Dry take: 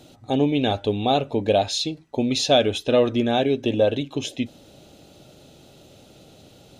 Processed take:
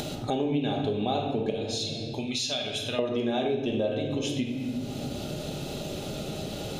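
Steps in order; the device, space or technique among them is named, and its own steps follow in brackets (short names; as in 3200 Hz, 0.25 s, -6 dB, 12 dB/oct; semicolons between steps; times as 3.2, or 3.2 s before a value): 1.5–2.99 passive tone stack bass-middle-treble 5-5-5; shoebox room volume 600 m³, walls mixed, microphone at 1.3 m; upward and downward compression (upward compressor, threshold -26 dBFS; compressor 4:1, threshold -29 dBFS, peak gain reduction 15.5 dB); gain +2 dB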